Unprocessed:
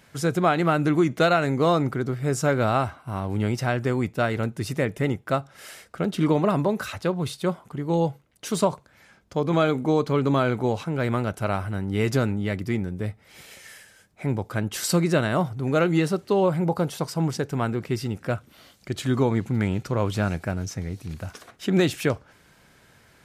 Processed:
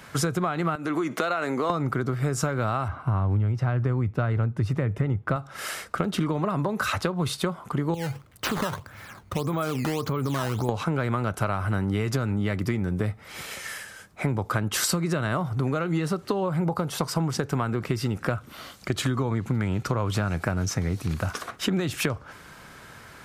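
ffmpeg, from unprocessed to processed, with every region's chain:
ffmpeg -i in.wav -filter_complex "[0:a]asettb=1/sr,asplit=3[link_01][link_02][link_03];[link_01]atrim=end=0.754[link_04];[link_02]atrim=start=0.75:end=1.7,asetpts=PTS-STARTPTS,afade=type=in:duration=0.004:curve=qsin,afade=type=out:start_time=0.946:duration=0.004:curve=qsin,highpass=270,acompressor=threshold=-31dB:ratio=3:attack=3.2:release=140:knee=1:detection=peak[link_05];[link_03]atrim=start=1.696[link_06];[link_04][link_05]acrossfade=duration=0.004:curve1=hsin:curve2=qsin[link_07];[link_07][link_06]acrossfade=duration=0.004:curve1=qsin:curve2=hsin,asettb=1/sr,asplit=3[link_08][link_09][link_10];[link_08]atrim=end=2.884[link_11];[link_09]atrim=start=2.88:end=5.36,asetpts=PTS-STARTPTS,afade=type=in:duration=0.004:curve=qsin,afade=type=out:start_time=2.476:duration=0.004:curve=qsin,lowpass=frequency=1800:poles=1,equalizer=frequency=100:width=1.4:gain=10[link_12];[link_10]atrim=start=5.356[link_13];[link_11][link_12]acrossfade=duration=0.004:curve1=hsin:curve2=qsin[link_14];[link_14][link_13]acrossfade=duration=0.004:curve1=qsin:curve2=hsin,asettb=1/sr,asplit=3[link_15][link_16][link_17];[link_15]atrim=end=7.944[link_18];[link_16]atrim=start=7.94:end=10.69,asetpts=PTS-STARTPTS,afade=type=in:duration=0.004:curve=qsin,afade=type=out:start_time=2.746:duration=0.004:curve=qsin,equalizer=frequency=98:width=2:gain=12,acompressor=threshold=-31dB:ratio=6:attack=3.2:release=140:knee=1:detection=peak,acrusher=samples=11:mix=1:aa=0.000001:lfo=1:lforange=17.6:lforate=1.7[link_19];[link_17]atrim=start=10.686[link_20];[link_18][link_19]acrossfade=duration=0.004:curve1=hsin:curve2=qsin[link_21];[link_21][link_20]acrossfade=duration=0.004:curve1=qsin:curve2=hsin,acrossover=split=130[link_22][link_23];[link_23]acompressor=threshold=-26dB:ratio=6[link_24];[link_22][link_24]amix=inputs=2:normalize=0,equalizer=frequency=1200:width=2:gain=7,acompressor=threshold=-30dB:ratio=6,volume=8dB" out.wav

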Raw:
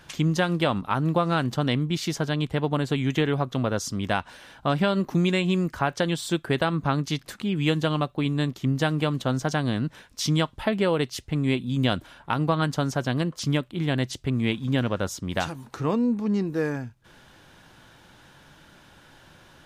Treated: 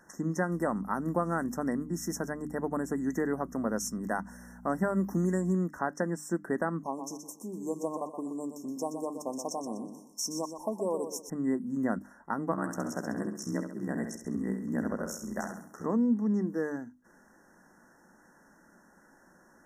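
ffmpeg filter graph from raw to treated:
ffmpeg -i in.wav -filter_complex "[0:a]asettb=1/sr,asplit=3[link_01][link_02][link_03];[link_01]atrim=end=0.524[link_04];[link_02]atrim=start=0.52:end=5.53,asetpts=PTS-STARTPTS,afade=type=in:duration=0.004:curve=qsin,afade=type=out:start_time=5.006:duration=0.004:curve=qsin,highshelf=frequency=7500:gain=12,aeval=exprs='val(0)+0.0141*(sin(2*PI*60*n/s)+sin(2*PI*2*60*n/s)/2+sin(2*PI*3*60*n/s)/3+sin(2*PI*4*60*n/s)/4+sin(2*PI*5*60*n/s)/5)':channel_layout=same[link_05];[link_03]atrim=start=5.526[link_06];[link_04][link_05]acrossfade=duration=0.004:curve1=hsin:curve2=qsin[link_07];[link_07][link_06]acrossfade=duration=0.004:curve1=qsin:curve2=hsin,asettb=1/sr,asplit=3[link_08][link_09][link_10];[link_08]atrim=end=6.834[link_11];[link_09]atrim=start=6.83:end=11.3,asetpts=PTS-STARTPTS,afade=type=in:duration=0.004:curve=qsin,afade=type=out:start_time=4.466:duration=0.004:curve=qsin,asuperstop=centerf=1600:order=20:qfactor=1.4,bass=frequency=250:gain=-15,treble=frequency=4000:gain=7,aecho=1:1:123|246|369|492:0.376|0.128|0.0434|0.0148,atrim=end_sample=197127[link_12];[link_10]atrim=start=11.296[link_13];[link_11][link_12]acrossfade=duration=0.004:curve1=hsin:curve2=qsin[link_14];[link_14][link_13]acrossfade=duration=0.004:curve1=qsin:curve2=hsin,asettb=1/sr,asplit=3[link_15][link_16][link_17];[link_15]atrim=end=12.514[link_18];[link_16]atrim=start=12.51:end=15.86,asetpts=PTS-STARTPTS,afade=type=in:duration=0.004:curve=qsin,afade=type=out:start_time=3.346:duration=0.004:curve=qsin,highshelf=frequency=5800:gain=8,aeval=exprs='val(0)*sin(2*PI*32*n/s)':channel_layout=same,aecho=1:1:67|134|201|268|335|402:0.447|0.21|0.0987|0.0464|0.0218|0.0102,atrim=end_sample=147735[link_19];[link_17]atrim=start=15.856[link_20];[link_18][link_19]acrossfade=duration=0.004:curve1=hsin:curve2=qsin[link_21];[link_21][link_20]acrossfade=duration=0.004:curve1=qsin:curve2=hsin,afftfilt=real='re*(1-between(b*sr/4096,2000,5300))':imag='im*(1-between(b*sr/4096,2000,5300))':win_size=4096:overlap=0.75,lowshelf=frequency=160:width_type=q:width=3:gain=-8,bandreject=frequency=50:width_type=h:width=6,bandreject=frequency=100:width_type=h:width=6,bandreject=frequency=150:width_type=h:width=6,bandreject=frequency=200:width_type=h:width=6,bandreject=frequency=250:width_type=h:width=6,bandreject=frequency=300:width_type=h:width=6,volume=-7dB" out.wav

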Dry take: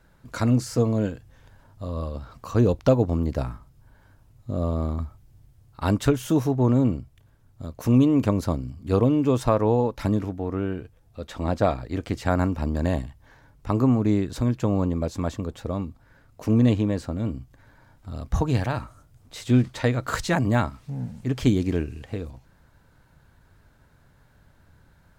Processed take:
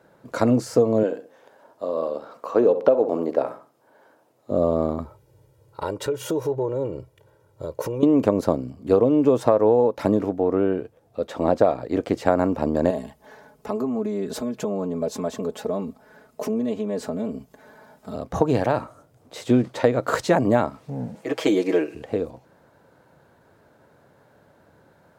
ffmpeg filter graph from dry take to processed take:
ffmpeg -i in.wav -filter_complex "[0:a]asettb=1/sr,asplit=3[link_01][link_02][link_03];[link_01]atrim=end=1.034[link_04];[link_02]atrim=start=1.03:end=4.51,asetpts=PTS-STARTPTS,afade=type=in:duration=0.004:curve=qsin,afade=type=out:start_time=3.476:duration=0.004:curve=qsin,highpass=330,acrossover=split=3400[link_05][link_06];[link_06]acompressor=threshold=-56dB:ratio=4:attack=1:release=60[link_07];[link_05][link_07]amix=inputs=2:normalize=0,asplit=2[link_08][link_09];[link_09]adelay=66,lowpass=frequency=2000:poles=1,volume=-12dB,asplit=2[link_10][link_11];[link_11]adelay=66,lowpass=frequency=2000:poles=1,volume=0.34,asplit=2[link_12][link_13];[link_13]adelay=66,lowpass=frequency=2000:poles=1,volume=0.34[link_14];[link_08][link_10][link_12][link_14]amix=inputs=4:normalize=0,atrim=end_sample=153468[link_15];[link_03]atrim=start=4.506[link_16];[link_04][link_15]acrossfade=duration=0.004:curve1=hsin:curve2=qsin[link_17];[link_17][link_16]acrossfade=duration=0.004:curve1=qsin:curve2=hsin,asettb=1/sr,asplit=3[link_18][link_19][link_20];[link_18]atrim=end=5.054[link_21];[link_19]atrim=start=5.05:end=8.03,asetpts=PTS-STARTPTS,afade=type=in:duration=0.004:curve=qsin,afade=type=out:start_time=2.976:duration=0.004:curve=qsin,aecho=1:1:2.1:0.85,atrim=end_sample=131418,acompressor=threshold=-28dB:ratio=8:attack=3.2:release=140:knee=1:detection=peak[link_22];[link_20]atrim=start=8.026[link_23];[link_21][link_22]acrossfade=duration=0.004:curve1=hsin:curve2=qsin[link_24];[link_24][link_23]acrossfade=duration=0.004:curve1=qsin:curve2=hsin,asettb=1/sr,asplit=3[link_25][link_26][link_27];[link_25]atrim=end=12.904[link_28];[link_26]atrim=start=12.9:end=18.16,asetpts=PTS-STARTPTS,afade=type=in:duration=0.004:curve=qsin,afade=type=out:start_time=5.256:duration=0.004:curve=qsin,highshelf=frequency=5100:gain=7,acompressor=threshold=-31dB:ratio=5:attack=3.2:release=140:knee=1:detection=peak,aecho=1:1:4.7:0.93,atrim=end_sample=231966[link_29];[link_27]atrim=start=18.156[link_30];[link_28][link_29]acrossfade=duration=0.004:curve1=hsin:curve2=qsin[link_31];[link_31][link_30]acrossfade=duration=0.004:curve1=qsin:curve2=hsin,asettb=1/sr,asplit=3[link_32][link_33][link_34];[link_32]atrim=end=21.154[link_35];[link_33]atrim=start=21.15:end=21.95,asetpts=PTS-STARTPTS,afade=type=in:duration=0.004:curve=qsin,afade=type=out:start_time=0.796:duration=0.004:curve=qsin,highpass=400,equalizer=frequency=2100:width_type=o:width=0.83:gain=4,aecho=1:1:6.2:0.9,atrim=end_sample=35280[link_36];[link_34]atrim=start=21.946[link_37];[link_35][link_36]acrossfade=duration=0.004:curve1=hsin:curve2=qsin[link_38];[link_38][link_37]acrossfade=duration=0.004:curve1=qsin:curve2=hsin,highpass=130,equalizer=frequency=520:width=0.7:gain=13,acompressor=threshold=-12dB:ratio=6,volume=-1dB" out.wav

